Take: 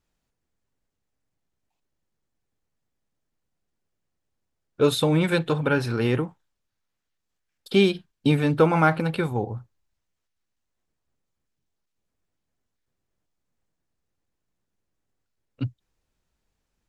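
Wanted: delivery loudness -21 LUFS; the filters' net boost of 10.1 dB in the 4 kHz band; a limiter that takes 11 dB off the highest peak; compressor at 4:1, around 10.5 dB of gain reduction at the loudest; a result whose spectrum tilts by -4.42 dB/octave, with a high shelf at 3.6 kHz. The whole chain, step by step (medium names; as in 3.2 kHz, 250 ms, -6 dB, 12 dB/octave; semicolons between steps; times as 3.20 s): treble shelf 3.6 kHz +5.5 dB; peaking EQ 4 kHz +8.5 dB; compression 4:1, threshold -25 dBFS; trim +13 dB; peak limiter -11 dBFS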